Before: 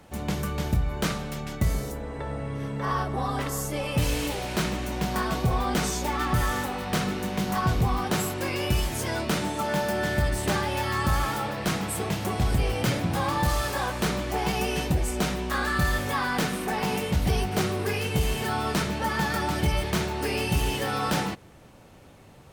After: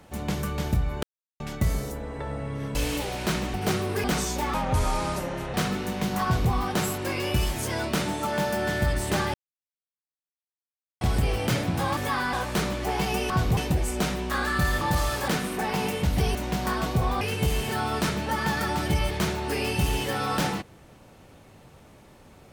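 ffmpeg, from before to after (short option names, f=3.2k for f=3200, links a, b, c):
-filter_complex "[0:a]asplit=18[a][b][c][d][e][f][g][h][i][j][k][l][m][n][o][p][q][r];[a]atrim=end=1.03,asetpts=PTS-STARTPTS,afade=t=out:st=1.026:d=0.004:c=hsin[s];[b]atrim=start=1.03:end=1.4,asetpts=PTS-STARTPTS,volume=0[t];[c]atrim=start=1.4:end=2.752,asetpts=PTS-STARTPTS,afade=t=in:d=0.004:c=hsin[u];[d]atrim=start=4.048:end=4.842[v];[e]atrim=start=17.438:end=17.942[w];[f]atrim=start=5.698:end=6.204[x];[g]atrim=start=6.2:end=6.9,asetpts=PTS-STARTPTS,asetrate=30870,aresample=44100[y];[h]atrim=start=6.896:end=10.7,asetpts=PTS-STARTPTS,afade=t=out:st=3.8:d=0.004:c=hsin[z];[i]atrim=start=10.7:end=12.37,asetpts=PTS-STARTPTS,volume=0[aa];[j]atrim=start=12.37:end=13.332,asetpts=PTS-STARTPTS,afade=t=in:d=0.004:c=hsin[ab];[k]atrim=start=16.008:end=16.372[ac];[l]atrim=start=13.798:end=14.772[ad];[m]atrim=start=7.598:end=7.872[ae];[n]atrim=start=14.768:end=16.012[af];[o]atrim=start=13.328:end=13.802[ag];[p]atrim=start=16.368:end=17.442[ah];[q]atrim=start=4.838:end=5.702[ai];[r]atrim=start=17.938[aj];[s][t][u]concat=n=3:v=0:a=1[ak];[ak][v]acrossfade=d=0.004:c1=hsin:c2=hsin[al];[al][w]acrossfade=d=0.004:c1=hsin:c2=hsin[am];[am][x]acrossfade=d=0.004:c1=hsin:c2=hsin[an];[an][y]acrossfade=d=0.004:c1=hsin:c2=hsin[ao];[z][aa][ab]concat=n=3:v=0:a=1[ap];[ao][ap]acrossfade=d=0.004:c1=hsin:c2=hsin[aq];[aq][ac]acrossfade=d=0.004:c1=hsin:c2=hsin[ar];[ar][ad]acrossfade=d=0.004:c1=hsin:c2=hsin[as];[as][ae]acrossfade=d=0.004:c1=hsin:c2=hsin[at];[at][af]acrossfade=d=0.004:c1=hsin:c2=hsin[au];[au][ag]acrossfade=d=0.004:c1=hsin:c2=hsin[av];[av][ah]acrossfade=d=0.004:c1=hsin:c2=hsin[aw];[aw][ai]acrossfade=d=0.004:c1=hsin:c2=hsin[ax];[ax][aj]acrossfade=d=0.004:c1=hsin:c2=hsin"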